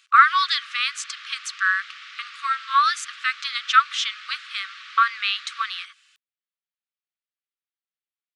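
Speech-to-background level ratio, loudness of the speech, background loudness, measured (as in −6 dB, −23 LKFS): 17.0 dB, −22.5 LKFS, −39.5 LKFS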